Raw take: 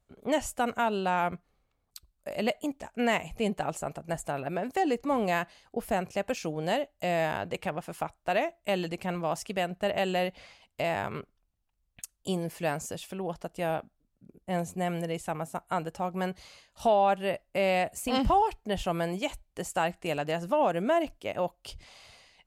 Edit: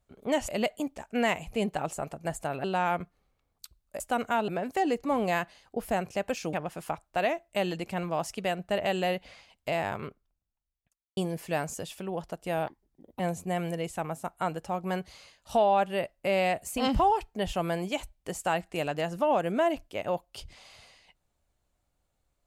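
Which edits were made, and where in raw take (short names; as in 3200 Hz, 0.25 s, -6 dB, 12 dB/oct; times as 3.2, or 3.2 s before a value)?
0.48–0.96 swap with 2.32–4.48
6.53–7.65 cut
10.85–12.29 studio fade out
13.79–14.5 speed 135%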